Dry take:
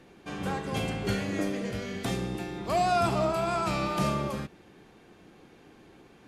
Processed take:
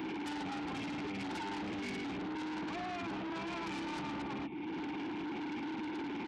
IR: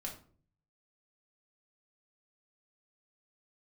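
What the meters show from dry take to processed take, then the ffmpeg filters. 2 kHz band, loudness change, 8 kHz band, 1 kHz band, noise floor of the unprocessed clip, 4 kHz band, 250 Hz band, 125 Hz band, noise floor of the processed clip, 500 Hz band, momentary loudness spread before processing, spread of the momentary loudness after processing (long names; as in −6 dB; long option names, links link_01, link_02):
−5.0 dB, −10.0 dB, −13.0 dB, −10.5 dB, −56 dBFS, −6.5 dB, −4.0 dB, −15.5 dB, −40 dBFS, −13.0 dB, 10 LU, 1 LU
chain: -filter_complex "[0:a]lowshelf=frequency=130:gain=6.5,acompressor=threshold=-49dB:ratio=2.5,alimiter=level_in=15.5dB:limit=-24dB:level=0:latency=1:release=248,volume=-15.5dB,asplit=3[link_01][link_02][link_03];[link_01]bandpass=frequency=300:width_type=q:width=8,volume=0dB[link_04];[link_02]bandpass=frequency=870:width_type=q:width=8,volume=-6dB[link_05];[link_03]bandpass=frequency=2240:width_type=q:width=8,volume=-9dB[link_06];[link_04][link_05][link_06]amix=inputs=3:normalize=0,asplit=2[link_07][link_08];[1:a]atrim=start_sample=2205,asetrate=70560,aresample=44100,adelay=10[link_09];[link_08][link_09]afir=irnorm=-1:irlink=0,volume=-12dB[link_10];[link_07][link_10]amix=inputs=2:normalize=0,tremolo=f=19:d=0.3,aresample=11025,aeval=exprs='0.00501*sin(PI/2*3.98*val(0)/0.00501)':channel_layout=same,aresample=44100,aresample=8000,aresample=44100,aemphasis=mode=production:type=75kf,aeval=exprs='0.0075*(cos(1*acos(clip(val(0)/0.0075,-1,1)))-cos(1*PI/2))+0.00237*(cos(5*acos(clip(val(0)/0.0075,-1,1)))-cos(5*PI/2))':channel_layout=same,highpass=46,volume=8.5dB"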